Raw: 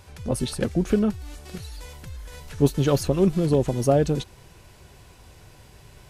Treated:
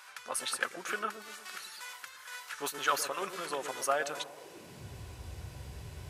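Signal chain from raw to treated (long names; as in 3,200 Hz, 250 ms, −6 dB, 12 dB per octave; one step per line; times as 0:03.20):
high-pass filter sweep 1,300 Hz → 69 Hz, 0:04.14–0:04.98
dynamic equaliser 4,400 Hz, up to −4 dB, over −46 dBFS, Q 1.3
delay with a low-pass on its return 118 ms, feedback 50%, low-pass 540 Hz, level −6 dB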